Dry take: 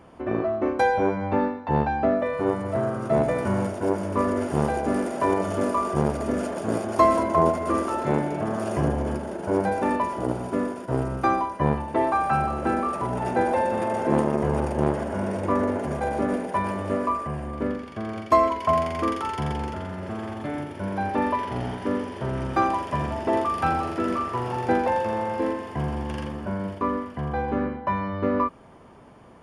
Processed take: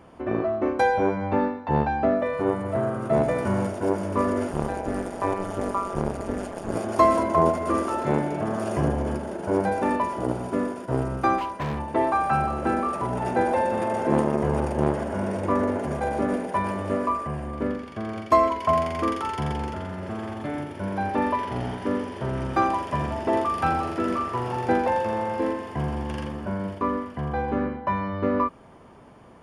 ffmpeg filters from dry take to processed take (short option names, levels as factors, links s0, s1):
-filter_complex "[0:a]asettb=1/sr,asplit=3[s0][s1][s2];[s0]atrim=end=2.424[s3];[s1]atrim=start=2.42:end=3.13,asetpts=PTS-STARTPTS,afade=t=in:d=0.004:c=qsin,afade=t=out:st=0.706:d=0.004:c=qsin,equalizer=f=5500:t=o:w=0.77:g=-5.5[s4];[s2]atrim=start=3.126[s5];[s3][s4]acrossfade=d=0.004:c1=hsin:c2=qsin[s6];[s6][s5]acrossfade=d=0.004:c1=qsin:c2=hsin,asettb=1/sr,asplit=3[s7][s8][s9];[s7]atrim=end=4.504[s10];[s8]atrim=start=4.5:end=6.76,asetpts=PTS-STARTPTS,afade=t=in:d=0.004:c=qsin,afade=t=out:st=2.256:d=0.004:c=qsin,tremolo=f=190:d=0.889[s11];[s9]atrim=start=6.756[s12];[s10][s11]acrossfade=d=0.004:c1=hsin:c2=qsin[s13];[s13][s12]acrossfade=d=0.004:c1=qsin:c2=hsin,asettb=1/sr,asplit=3[s14][s15][s16];[s14]atrim=end=11.384[s17];[s15]atrim=start=11.38:end=11.79,asetpts=PTS-STARTPTS,afade=t=in:d=0.004:c=qsin,afade=t=out:st=0.406:d=0.004:c=qsin,asoftclip=type=hard:threshold=0.0531[s18];[s16]atrim=start=11.786[s19];[s17][s18]acrossfade=d=0.004:c1=hsin:c2=qsin[s20];[s20][s19]acrossfade=d=0.004:c1=qsin:c2=hsin"